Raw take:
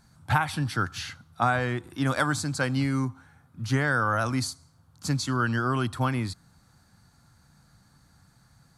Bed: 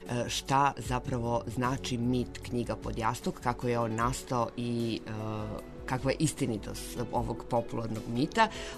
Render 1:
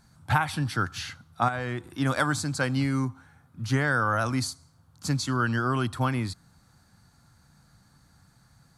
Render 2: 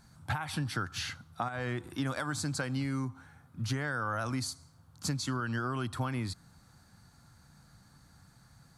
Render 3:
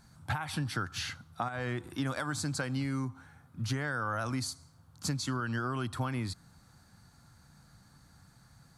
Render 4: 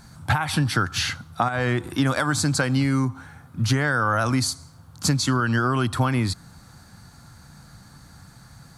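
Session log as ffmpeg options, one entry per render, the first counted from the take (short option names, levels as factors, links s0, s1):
-filter_complex "[0:a]asettb=1/sr,asplit=3[s0][s1][s2];[s0]atrim=end=1.484[s3];[s1]atrim=start=1.48:end=1.91,asetpts=PTS-STARTPTS,afade=t=in:d=0.004:c=qsin,afade=t=out:st=0.426:d=0.004:c=qsin,acompressor=threshold=0.0501:ratio=6:attack=3.2:release=140:knee=1:detection=peak[s4];[s2]atrim=start=1.906[s5];[s3][s4]acrossfade=d=0.004:c1=hsin:c2=qsin[s6];[s6][s5]acrossfade=d=0.004:c1=qsin:c2=hsin"
-af "alimiter=limit=0.168:level=0:latency=1:release=248,acompressor=threshold=0.0316:ratio=6"
-af anull
-af "volume=3.98"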